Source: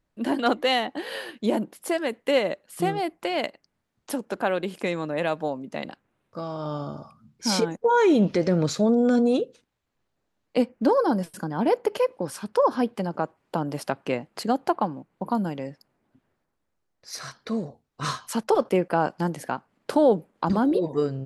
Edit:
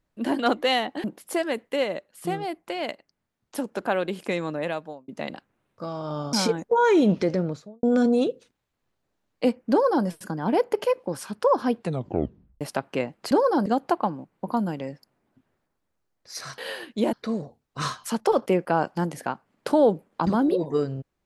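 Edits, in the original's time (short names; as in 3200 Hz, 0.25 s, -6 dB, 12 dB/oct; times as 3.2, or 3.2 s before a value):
1.04–1.59 move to 17.36
2.24–4.13 gain -3.5 dB
5.08–5.63 fade out
6.88–7.46 cut
8.27–8.96 studio fade out
10.84–11.19 copy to 14.44
12.91 tape stop 0.83 s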